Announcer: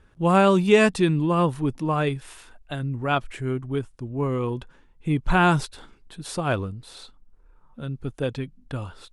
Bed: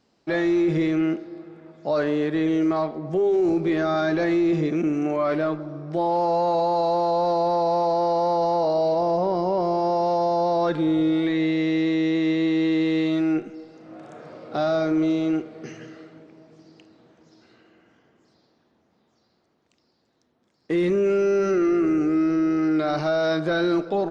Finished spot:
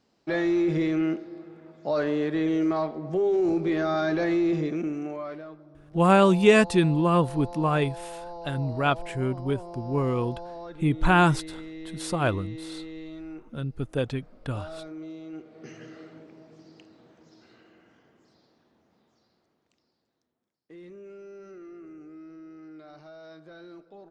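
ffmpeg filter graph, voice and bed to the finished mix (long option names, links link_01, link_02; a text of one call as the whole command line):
ffmpeg -i stem1.wav -i stem2.wav -filter_complex "[0:a]adelay=5750,volume=-0.5dB[link_01];[1:a]volume=14dB,afade=type=out:start_time=4.45:duration=0.99:silence=0.177828,afade=type=in:start_time=15.31:duration=0.79:silence=0.141254,afade=type=out:start_time=18.93:duration=1.72:silence=0.0668344[link_02];[link_01][link_02]amix=inputs=2:normalize=0" out.wav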